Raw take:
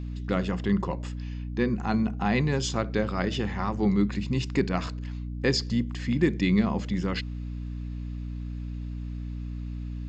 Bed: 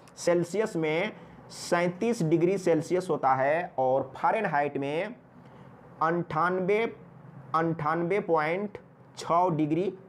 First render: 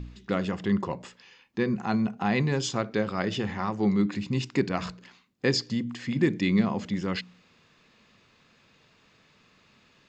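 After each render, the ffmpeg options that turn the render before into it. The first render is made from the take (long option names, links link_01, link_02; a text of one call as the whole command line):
ffmpeg -i in.wav -af "bandreject=frequency=60:width_type=h:width=4,bandreject=frequency=120:width_type=h:width=4,bandreject=frequency=180:width_type=h:width=4,bandreject=frequency=240:width_type=h:width=4,bandreject=frequency=300:width_type=h:width=4" out.wav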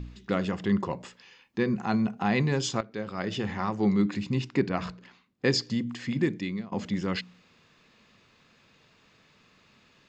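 ffmpeg -i in.wav -filter_complex "[0:a]asettb=1/sr,asplit=3[link_01][link_02][link_03];[link_01]atrim=end=4.354[link_04];[link_02]atrim=start=4.35:end=5.45,asetpts=PTS-STARTPTS,afade=type=in:duration=0.004:curve=qsin,afade=type=out:start_time=1.096:duration=0.004:curve=qsin,lowpass=frequency=3200:poles=1[link_05];[link_03]atrim=start=5.446[link_06];[link_04][link_05]acrossfade=duration=0.004:curve1=hsin:curve2=qsin[link_07];[link_07][link_06]acrossfade=duration=0.004:curve1=qsin:curve2=hsin,asplit=3[link_08][link_09][link_10];[link_08]atrim=end=2.81,asetpts=PTS-STARTPTS,afade=type=out:start_time=2.806:duration=0.004:curve=hsin:silence=0.211349[link_11];[link_09]atrim=start=2.81:end=6.72,asetpts=PTS-STARTPTS,afade=type=in:duration=0.72:silence=0.211349,afade=type=out:start_time=3.25:duration=0.66:silence=0.0668344[link_12];[link_10]atrim=start=6.72,asetpts=PTS-STARTPTS,afade=type=in:duration=0.004:curve=hsin:silence=0.0668344[link_13];[link_11][link_12][link_13]concat=n=3:v=0:a=1" out.wav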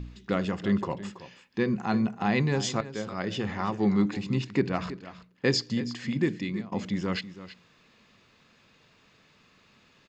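ffmpeg -i in.wav -af "aecho=1:1:328:0.188" out.wav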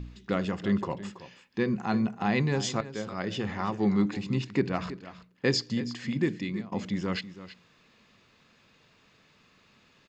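ffmpeg -i in.wav -af "volume=-1dB" out.wav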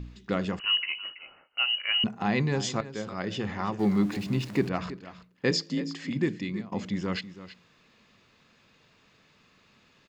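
ffmpeg -i in.wav -filter_complex "[0:a]asettb=1/sr,asplit=3[link_01][link_02][link_03];[link_01]atrim=end=0.594[link_04];[link_02]atrim=start=0.59:end=2.04,asetpts=PTS-STARTPTS,afade=type=in:duration=0.004:curve=qsin,afade=type=out:start_time=1.446:duration=0.004:curve=qsin,lowpass=frequency=2600:width_type=q:width=0.5098,lowpass=frequency=2600:width_type=q:width=0.6013,lowpass=frequency=2600:width_type=q:width=0.9,lowpass=frequency=2600:width_type=q:width=2.563,afreqshift=-3100[link_05];[link_03]atrim=start=2.036[link_06];[link_04][link_05]acrossfade=duration=0.004:curve1=hsin:curve2=qsin[link_07];[link_07][link_06]acrossfade=duration=0.004:curve1=qsin:curve2=hsin,asettb=1/sr,asplit=3[link_08][link_09][link_10];[link_08]atrim=end=3.794[link_11];[link_09]atrim=start=3.79:end=4.69,asetpts=PTS-STARTPTS,afade=type=in:duration=0.004:curve=qsin,afade=type=out:start_time=0.896:duration=0.004:curve=qsin,aeval=exprs='val(0)+0.5*0.01*sgn(val(0))':channel_layout=same[link_12];[link_10]atrim=start=4.686[link_13];[link_11][link_12]acrossfade=duration=0.004:curve1=hsin:curve2=qsin[link_14];[link_14][link_13]acrossfade=duration=0.004:curve1=qsin:curve2=hsin,asplit=3[link_15][link_16][link_17];[link_15]afade=type=out:start_time=5.5:duration=0.02[link_18];[link_16]afreqshift=39,afade=type=in:start_time=5.5:duration=0.02,afade=type=out:start_time=6.09:duration=0.02[link_19];[link_17]afade=type=in:start_time=6.09:duration=0.02[link_20];[link_18][link_19][link_20]amix=inputs=3:normalize=0" out.wav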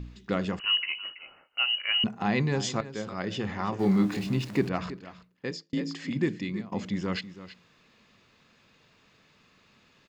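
ffmpeg -i in.wav -filter_complex "[0:a]asettb=1/sr,asplit=3[link_01][link_02][link_03];[link_01]atrim=end=3.704[link_04];[link_02]atrim=start=3.7:end=4.33,asetpts=PTS-STARTPTS,afade=type=in:duration=0.004:curve=qsin,afade=type=out:start_time=0.626:duration=0.004:curve=qsin,asplit=2[link_05][link_06];[link_06]adelay=26,volume=-5.5dB[link_07];[link_05][link_07]amix=inputs=2:normalize=0,atrim=end_sample=27783[link_08];[link_03]atrim=start=4.326[link_09];[link_04][link_08]acrossfade=duration=0.004:curve1=hsin:curve2=qsin[link_10];[link_10][link_09]acrossfade=duration=0.004:curve1=qsin:curve2=hsin,asplit=2[link_11][link_12];[link_11]atrim=end=5.73,asetpts=PTS-STARTPTS,afade=type=out:start_time=5.05:duration=0.68[link_13];[link_12]atrim=start=5.73,asetpts=PTS-STARTPTS,afade=type=in:duration=0.004:curve=hsin[link_14];[link_13][link_14]concat=n=2:v=0:a=1" out.wav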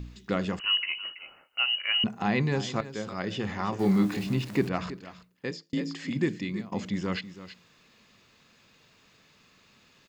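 ffmpeg -i in.wav -filter_complex "[0:a]acrossover=split=3700[link_01][link_02];[link_02]acompressor=threshold=-50dB:ratio=4:attack=1:release=60[link_03];[link_01][link_03]amix=inputs=2:normalize=0,highshelf=frequency=5800:gain=9.5" out.wav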